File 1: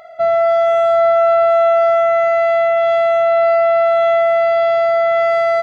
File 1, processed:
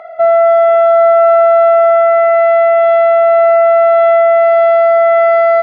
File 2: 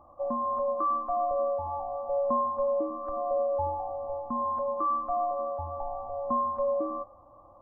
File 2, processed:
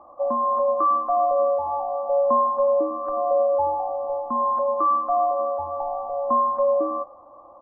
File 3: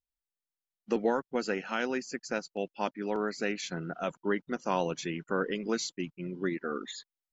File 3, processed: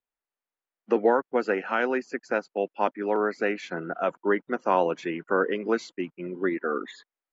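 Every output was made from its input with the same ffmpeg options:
-filter_complex "[0:a]acrossover=split=260 2400:gain=0.158 1 0.112[s0][s1][s2];[s0][s1][s2]amix=inputs=3:normalize=0,asplit=2[s3][s4];[s4]alimiter=limit=0.178:level=0:latency=1,volume=1.12[s5];[s3][s5]amix=inputs=2:normalize=0,aresample=22050,aresample=44100,volume=1.19"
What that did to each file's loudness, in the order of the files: +5.0 LU, +7.5 LU, +6.0 LU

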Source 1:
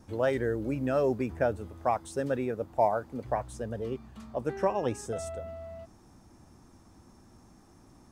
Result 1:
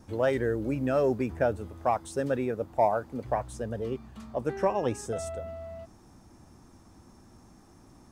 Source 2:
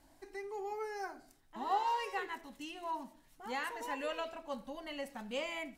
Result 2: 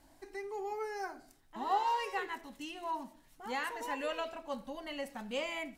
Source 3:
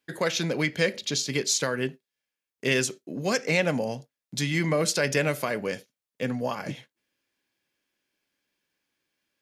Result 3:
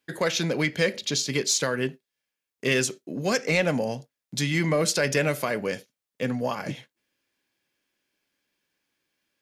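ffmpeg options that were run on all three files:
-af "aeval=exprs='0.376*(cos(1*acos(clip(val(0)/0.376,-1,1)))-cos(1*PI/2))+0.0168*(cos(5*acos(clip(val(0)/0.376,-1,1)))-cos(5*PI/2))':c=same"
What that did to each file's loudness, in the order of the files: +1.5 LU, +1.5 LU, +1.0 LU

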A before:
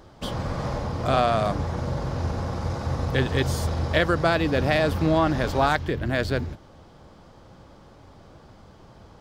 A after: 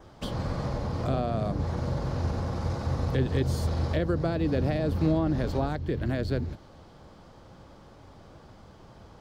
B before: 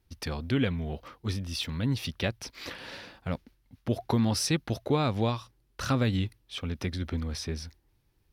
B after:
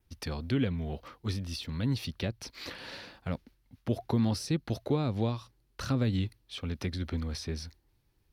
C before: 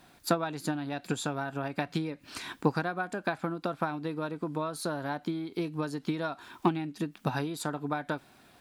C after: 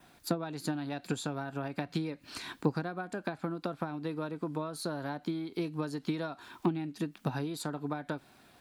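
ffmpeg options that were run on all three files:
-filter_complex "[0:a]adynamicequalizer=threshold=0.00158:dfrequency=4300:dqfactor=7.8:tfrequency=4300:tqfactor=7.8:attack=5:release=100:ratio=0.375:range=3:mode=boostabove:tftype=bell,acrossover=split=510[s0][s1];[s1]acompressor=threshold=0.0158:ratio=6[s2];[s0][s2]amix=inputs=2:normalize=0,volume=0.841"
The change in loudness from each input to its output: -4.5 LU, -2.5 LU, -3.0 LU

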